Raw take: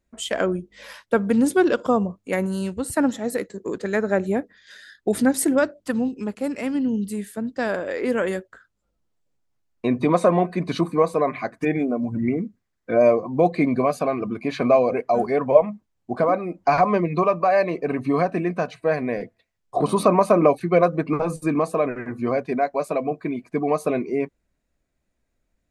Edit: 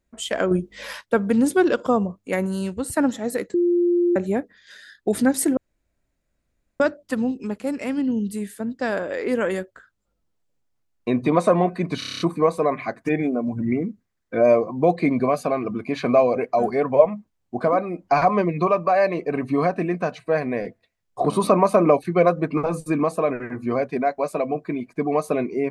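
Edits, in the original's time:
0:00.51–0:01.01: clip gain +6.5 dB
0:03.54–0:04.16: beep over 349 Hz −15.5 dBFS
0:05.57: splice in room tone 1.23 s
0:10.76: stutter 0.03 s, 8 plays

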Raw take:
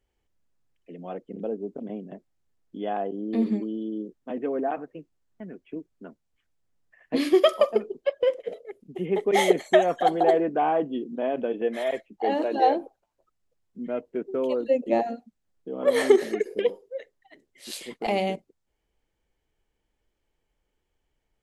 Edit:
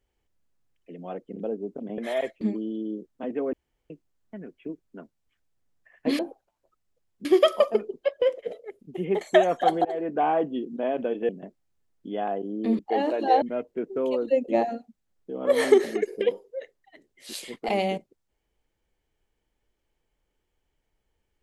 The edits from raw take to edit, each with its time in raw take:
0:01.98–0:03.48: swap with 0:11.68–0:12.11
0:04.60–0:04.97: fill with room tone
0:09.22–0:09.60: remove
0:10.24–0:10.59: fade in, from −23 dB
0:12.74–0:13.80: move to 0:07.26

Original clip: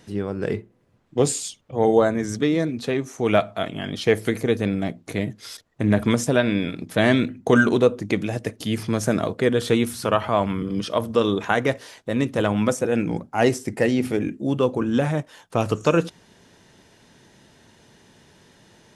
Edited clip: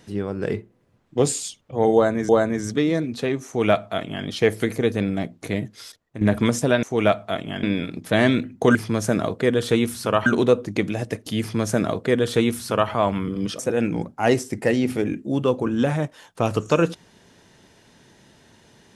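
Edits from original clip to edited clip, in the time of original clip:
0:01.94–0:02.29: repeat, 2 plays
0:03.11–0:03.91: duplicate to 0:06.48
0:05.28–0:05.86: fade out, to −11.5 dB
0:08.74–0:10.25: duplicate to 0:07.60
0:10.93–0:12.74: remove

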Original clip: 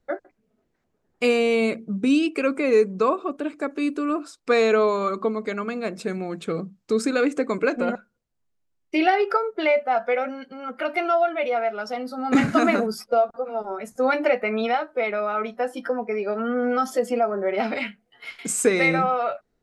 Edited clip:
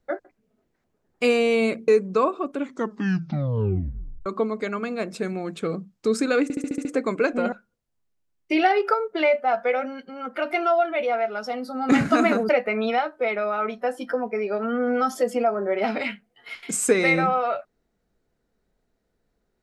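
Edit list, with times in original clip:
0:01.88–0:02.73: remove
0:03.34: tape stop 1.77 s
0:07.28: stutter 0.07 s, 7 plays
0:12.92–0:14.25: remove

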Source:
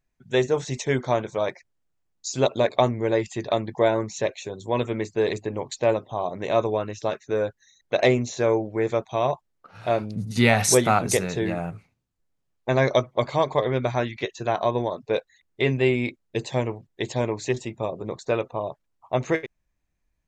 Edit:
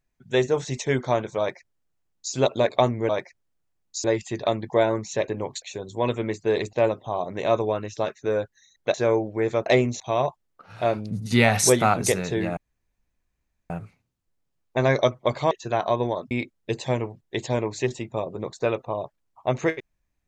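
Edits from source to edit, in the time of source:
0:01.39–0:02.34: duplicate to 0:03.09
0:05.44–0:05.78: move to 0:04.33
0:07.99–0:08.33: move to 0:09.05
0:11.62: splice in room tone 1.13 s
0:13.43–0:14.26: remove
0:15.06–0:15.97: remove

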